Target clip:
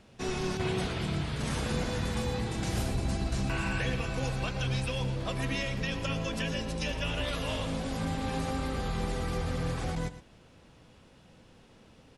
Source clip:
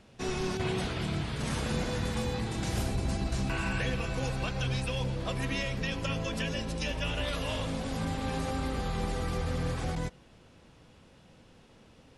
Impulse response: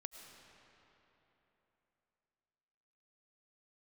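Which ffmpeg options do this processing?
-af "aecho=1:1:115:0.211"

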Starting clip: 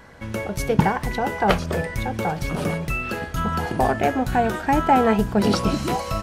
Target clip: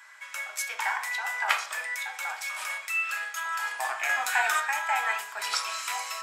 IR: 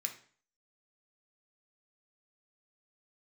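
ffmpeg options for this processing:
-filter_complex "[0:a]asettb=1/sr,asplit=3[a][b][c];[a]atrim=end=4.094[d];[b]atrim=start=4.09:end=4.6,asetpts=PTS-STARTPTS,afade=t=in:d=0.004:c=qsin,afade=t=out:st=0.506:d=0.004:c=qsin,acontrast=89[e];[c]atrim=start=4.596[f];[d][e]acrossfade=d=0.004:c1=hsin:c2=qsin[g];[g][f]acrossfade=d=0.004:c1=qsin:c2=hsin,highpass=f=950:w=0.5412,highpass=f=950:w=1.3066[h];[1:a]atrim=start_sample=2205[i];[h][i]afir=irnorm=-1:irlink=0"

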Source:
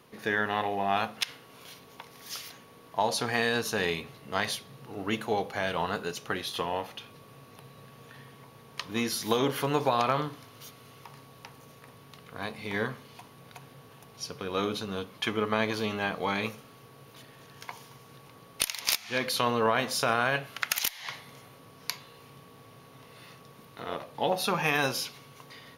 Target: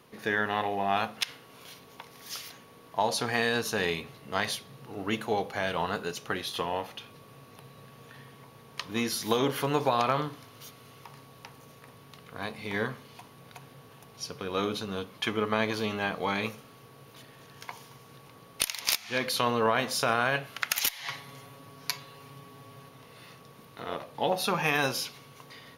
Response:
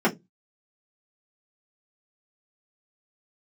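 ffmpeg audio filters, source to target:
-filter_complex "[0:a]asettb=1/sr,asplit=3[a][b][c];[a]atrim=end=20.784[d];[b]atrim=start=20.78:end=22.89,asetpts=PTS-STARTPTS,afade=t=in:d=0.004:c=qsin,afade=t=out:st=2.106:d=0.004:c=qsin,aecho=1:1:7.2:0.73,atrim=end_sample=93051[e];[c]atrim=start=22.886[f];[d][e]acrossfade=d=0.004:c1=hsin:c2=qsin[g];[g][f]acrossfade=d=0.004:c1=qsin:c2=hsin"

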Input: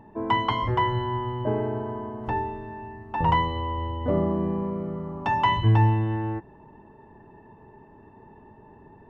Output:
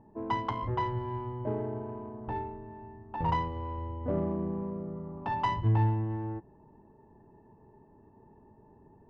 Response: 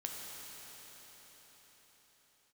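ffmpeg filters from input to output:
-af "adynamicsmooth=sensitivity=0.5:basefreq=1.2k,volume=-6.5dB"

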